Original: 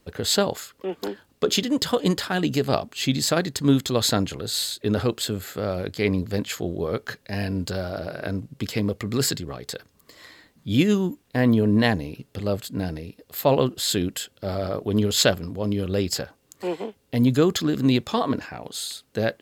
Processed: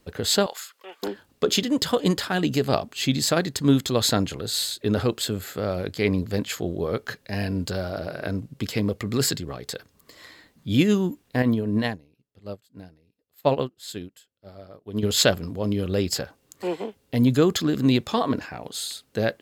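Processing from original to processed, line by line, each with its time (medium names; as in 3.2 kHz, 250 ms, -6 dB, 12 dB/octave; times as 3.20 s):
0.46–1.03 s: high-pass 970 Hz
11.42–15.03 s: upward expansion 2.5:1, over -33 dBFS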